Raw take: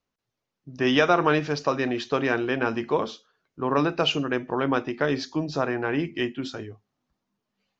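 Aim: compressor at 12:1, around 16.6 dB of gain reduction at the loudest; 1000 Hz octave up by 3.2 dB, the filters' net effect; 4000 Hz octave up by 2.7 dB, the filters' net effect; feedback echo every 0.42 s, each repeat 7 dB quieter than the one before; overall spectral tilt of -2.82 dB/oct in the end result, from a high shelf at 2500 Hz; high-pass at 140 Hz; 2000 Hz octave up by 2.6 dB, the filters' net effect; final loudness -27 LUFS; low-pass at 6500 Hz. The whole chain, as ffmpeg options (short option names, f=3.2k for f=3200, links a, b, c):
-af "highpass=140,lowpass=6.5k,equalizer=f=1k:t=o:g=4,equalizer=f=2k:t=o:g=3,highshelf=f=2.5k:g=-6.5,equalizer=f=4k:t=o:g=8.5,acompressor=threshold=-30dB:ratio=12,aecho=1:1:420|840|1260|1680|2100:0.447|0.201|0.0905|0.0407|0.0183,volume=8dB"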